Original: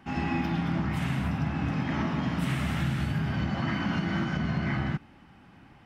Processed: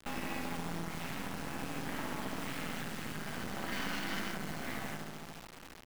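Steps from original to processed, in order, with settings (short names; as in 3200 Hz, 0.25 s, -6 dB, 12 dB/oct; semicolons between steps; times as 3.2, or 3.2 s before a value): crossover distortion -56.5 dBFS; low shelf 230 Hz -7 dB; on a send: darkening echo 71 ms, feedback 63%, low-pass 1700 Hz, level -3 dB; on the sum: compressor 3:1, threshold -47 dBFS, peak gain reduction 16.5 dB; 3.72–4.32 high shelf 2600 Hz +12 dB; bit-crush 9-bit; HPF 180 Hz 12 dB/oct; half-wave rectifier; gain +10.5 dB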